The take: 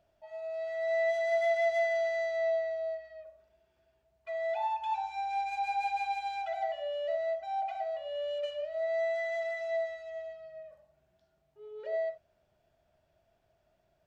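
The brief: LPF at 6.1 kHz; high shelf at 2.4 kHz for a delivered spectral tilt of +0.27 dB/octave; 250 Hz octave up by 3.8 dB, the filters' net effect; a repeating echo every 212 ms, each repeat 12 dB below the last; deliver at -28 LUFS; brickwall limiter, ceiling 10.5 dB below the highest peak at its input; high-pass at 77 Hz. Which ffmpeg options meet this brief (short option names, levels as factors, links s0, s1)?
-af "highpass=77,lowpass=6100,equalizer=f=250:t=o:g=7,highshelf=f=2400:g=-6.5,alimiter=level_in=2.66:limit=0.0631:level=0:latency=1,volume=0.376,aecho=1:1:212|424|636:0.251|0.0628|0.0157,volume=3.16"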